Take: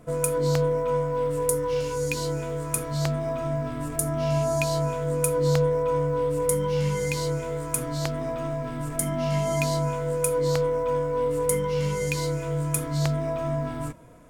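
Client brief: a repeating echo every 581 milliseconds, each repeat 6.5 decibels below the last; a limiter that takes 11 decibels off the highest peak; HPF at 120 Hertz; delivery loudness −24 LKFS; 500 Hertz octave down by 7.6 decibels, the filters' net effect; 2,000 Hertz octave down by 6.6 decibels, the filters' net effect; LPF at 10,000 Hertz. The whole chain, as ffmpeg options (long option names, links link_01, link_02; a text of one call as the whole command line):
ffmpeg -i in.wav -af "highpass=120,lowpass=10000,equalizer=frequency=500:width_type=o:gain=-8,equalizer=frequency=2000:width_type=o:gain=-8.5,alimiter=limit=-22dB:level=0:latency=1,aecho=1:1:581|1162|1743|2324|2905|3486:0.473|0.222|0.105|0.0491|0.0231|0.0109,volume=6dB" out.wav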